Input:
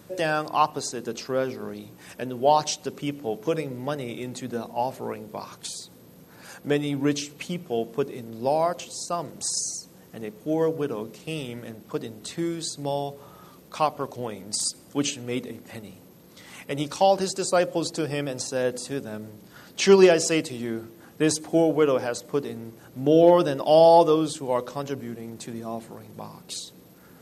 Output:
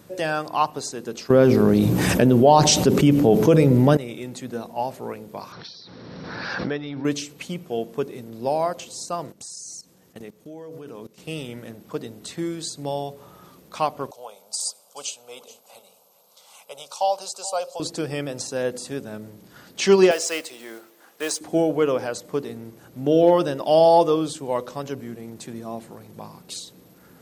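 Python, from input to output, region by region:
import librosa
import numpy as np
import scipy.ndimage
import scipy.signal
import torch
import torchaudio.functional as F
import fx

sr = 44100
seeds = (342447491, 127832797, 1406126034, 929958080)

y = fx.chain(x, sr, fx.low_shelf(hz=450.0, db=11.5),
    fx.env_flatten(amount_pct=70), at=(1.3, 3.97))
y = fx.chain(y, sr, fx.cheby_ripple(hz=5700.0, ripple_db=6),
    fx.pre_swell(db_per_s=24.0), at=(5.52, 7.05))
y = fx.chain(y, sr, fx.peak_eq(hz=6300.0, db=3.5, octaves=2.0),
    fx.level_steps(step_db=19), at=(9.32, 11.18))
y = fx.chain(y, sr, fx.highpass(hz=570.0, slope=12),
    fx.fixed_phaser(hz=760.0, stages=4),
    fx.echo_single(ms=430, db=-18.0), at=(14.11, 17.8))
y = fx.chain(y, sr, fx.block_float(bits=5),
    fx.highpass(hz=570.0, slope=12), at=(20.11, 21.41))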